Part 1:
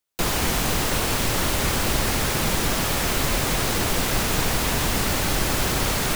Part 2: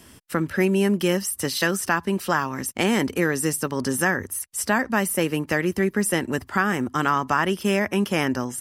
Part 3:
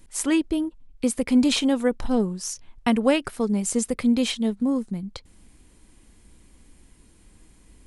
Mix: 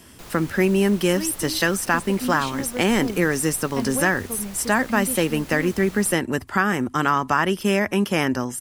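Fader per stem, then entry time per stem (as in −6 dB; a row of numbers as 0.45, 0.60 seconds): −18.5, +1.5, −9.5 decibels; 0.00, 0.00, 0.90 seconds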